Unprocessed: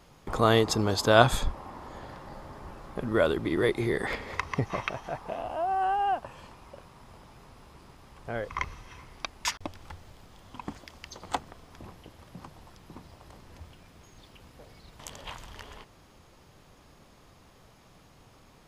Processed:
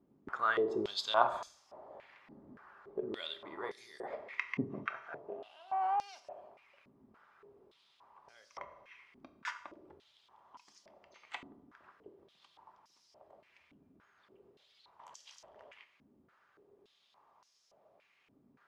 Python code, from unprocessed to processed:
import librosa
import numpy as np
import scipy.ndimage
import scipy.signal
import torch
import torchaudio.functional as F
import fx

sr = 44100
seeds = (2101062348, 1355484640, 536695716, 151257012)

y = fx.hpss(x, sr, part='harmonic', gain_db=-5)
y = fx.leveller(y, sr, passes=2, at=(5.72, 6.2))
y = fx.rev_fdn(y, sr, rt60_s=0.8, lf_ratio=1.3, hf_ratio=0.75, size_ms=15.0, drr_db=6.5)
y = fx.filter_held_bandpass(y, sr, hz=3.5, low_hz=260.0, high_hz=5500.0)
y = y * 10.0 ** (1.0 / 20.0)